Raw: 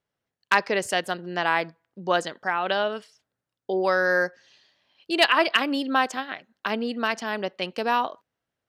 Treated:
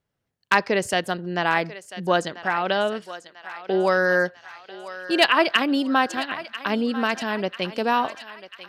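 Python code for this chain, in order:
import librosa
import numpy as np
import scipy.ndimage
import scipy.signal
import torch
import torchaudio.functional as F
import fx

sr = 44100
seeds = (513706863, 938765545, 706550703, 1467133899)

y = fx.low_shelf(x, sr, hz=210.0, db=10.0)
y = fx.echo_thinned(y, sr, ms=993, feedback_pct=60, hz=710.0, wet_db=-13.0)
y = y * librosa.db_to_amplitude(1.0)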